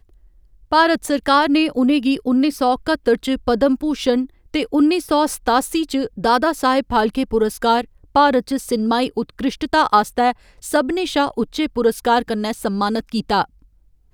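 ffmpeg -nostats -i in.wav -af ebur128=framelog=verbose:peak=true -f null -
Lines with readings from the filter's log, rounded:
Integrated loudness:
  I:         -18.5 LUFS
  Threshold: -28.7 LUFS
Loudness range:
  LRA:         2.4 LU
  Threshold: -38.6 LUFS
  LRA low:   -20.0 LUFS
  LRA high:  -17.6 LUFS
True peak:
  Peak:       -1.1 dBFS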